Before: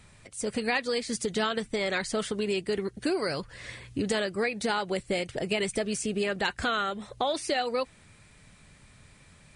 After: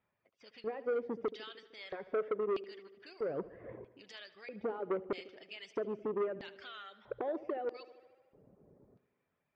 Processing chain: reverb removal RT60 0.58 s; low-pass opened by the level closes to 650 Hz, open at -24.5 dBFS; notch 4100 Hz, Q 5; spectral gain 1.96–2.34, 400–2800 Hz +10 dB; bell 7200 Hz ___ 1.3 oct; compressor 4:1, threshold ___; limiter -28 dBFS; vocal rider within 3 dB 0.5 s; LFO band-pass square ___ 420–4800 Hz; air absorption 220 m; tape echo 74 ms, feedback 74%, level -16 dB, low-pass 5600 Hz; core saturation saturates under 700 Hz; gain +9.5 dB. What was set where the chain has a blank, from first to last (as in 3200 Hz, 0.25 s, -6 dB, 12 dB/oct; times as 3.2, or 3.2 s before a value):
-4 dB, -36 dBFS, 0.78 Hz